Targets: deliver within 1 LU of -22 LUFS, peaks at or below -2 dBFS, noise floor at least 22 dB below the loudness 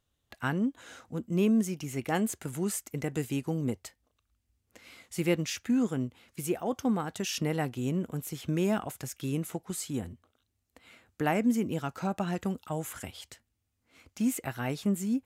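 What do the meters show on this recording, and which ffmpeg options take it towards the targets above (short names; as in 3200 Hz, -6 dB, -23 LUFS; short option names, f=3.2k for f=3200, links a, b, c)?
loudness -32.0 LUFS; peak -13.5 dBFS; loudness target -22.0 LUFS
-> -af "volume=10dB"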